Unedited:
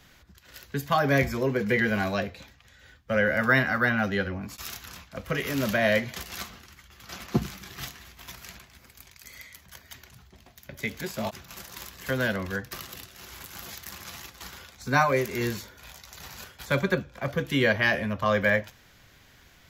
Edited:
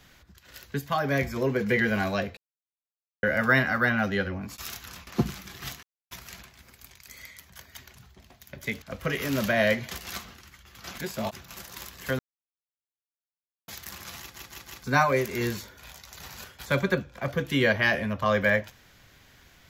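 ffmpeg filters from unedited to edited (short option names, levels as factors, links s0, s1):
-filter_complex "[0:a]asplit=16[s0][s1][s2][s3][s4][s5][s6][s7][s8][s9][s10][s11][s12][s13][s14][s15];[s0]atrim=end=0.792[s16];[s1]atrim=start=0.788:end=1.362,asetpts=PTS-STARTPTS,volume=0.668[s17];[s2]atrim=start=1.358:end=2.37,asetpts=PTS-STARTPTS,afade=t=out:st=1.008:d=0.004:c=hsin[s18];[s3]atrim=start=2.37:end=3.23,asetpts=PTS-STARTPTS,volume=0[s19];[s4]atrim=start=3.23:end=5.072,asetpts=PTS-STARTPTS,afade=t=in:d=0.004:c=hsin[s20];[s5]atrim=start=7.228:end=7.99,asetpts=PTS-STARTPTS,afade=t=out:st=0.758:d=0.004:c=hsin[s21];[s6]atrim=start=7.99:end=8.27,asetpts=PTS-STARTPTS,volume=0[s22];[s7]atrim=start=8.27:end=10.982,asetpts=PTS-STARTPTS,afade=t=in:d=0.004:c=hsin[s23];[s8]atrim=start=5.068:end=7.232[s24];[s9]atrim=start=10.978:end=12.19,asetpts=PTS-STARTPTS,afade=t=out:st=1.208:d=0.004:c=hsin[s25];[s10]atrim=start=12.19:end=13.68,asetpts=PTS-STARTPTS,volume=0[s26];[s11]atrim=start=13.68:end=14.362,asetpts=PTS-STARTPTS,afade=t=in:d=0.004:c=hsin[s27];[s12]atrim=start=14.198:end=14.362[s28];[s13]atrim=start=14.198:end=14.362[s29];[s14]atrim=start=14.198:end=14.362[s30];[s15]atrim=start=14.838[s31];[s16][s17]acrossfade=d=0.004:c1=hsin:c2=hsin[s32];[s18][s19][s20]concat=n=3:v=0:a=1[s33];[s32][s33]acrossfade=d=0.004:c1=hsin:c2=hsin[s34];[s21][s22][s23]concat=n=3:v=0:a=1[s35];[s34][s35]acrossfade=d=0.004:c1=hsin:c2=hsin[s36];[s36][s24]acrossfade=d=0.004:c1=hsin:c2=hsin[s37];[s25][s26][s27]concat=n=3:v=0:a=1[s38];[s37][s38]acrossfade=d=0.004:c1=hsin:c2=hsin[s39];[s39][s28]acrossfade=d=0.004:c1=hsin:c2=hsin[s40];[s40][s29]acrossfade=d=0.004:c1=hsin:c2=hsin[s41];[s41][s30]acrossfade=d=0.004:c1=hsin:c2=hsin[s42];[s42][s31]acrossfade=d=0.004:c1=hsin:c2=hsin"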